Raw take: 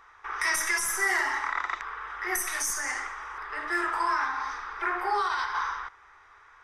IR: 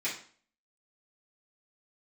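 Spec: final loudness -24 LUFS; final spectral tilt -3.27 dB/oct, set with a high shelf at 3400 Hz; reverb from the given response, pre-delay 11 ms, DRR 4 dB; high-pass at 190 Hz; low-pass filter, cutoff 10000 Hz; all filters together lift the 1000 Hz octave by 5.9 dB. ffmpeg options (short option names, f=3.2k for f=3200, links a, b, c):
-filter_complex "[0:a]highpass=190,lowpass=10k,equalizer=f=1k:t=o:g=7.5,highshelf=f=3.4k:g=-4.5,asplit=2[a][b];[1:a]atrim=start_sample=2205,adelay=11[c];[b][c]afir=irnorm=-1:irlink=0,volume=-10.5dB[d];[a][d]amix=inputs=2:normalize=0,volume=1dB"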